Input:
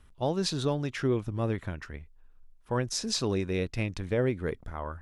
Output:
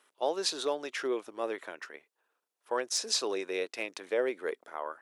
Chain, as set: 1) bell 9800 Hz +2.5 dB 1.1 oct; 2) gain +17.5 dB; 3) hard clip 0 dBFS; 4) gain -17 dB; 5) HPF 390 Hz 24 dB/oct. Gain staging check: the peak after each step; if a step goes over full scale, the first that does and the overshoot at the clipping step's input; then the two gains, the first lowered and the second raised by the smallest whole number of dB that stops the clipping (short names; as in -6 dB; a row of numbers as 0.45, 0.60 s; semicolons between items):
-13.5, +4.0, 0.0, -17.0, -16.5 dBFS; step 2, 4.0 dB; step 2 +13.5 dB, step 4 -13 dB